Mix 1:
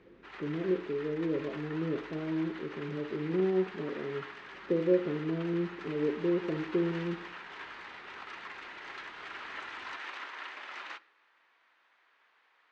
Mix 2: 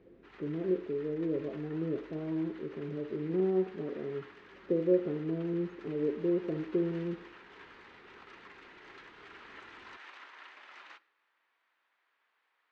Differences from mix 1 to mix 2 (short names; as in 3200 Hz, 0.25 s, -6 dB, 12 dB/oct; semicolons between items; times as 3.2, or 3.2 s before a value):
speech: send off; background -9.0 dB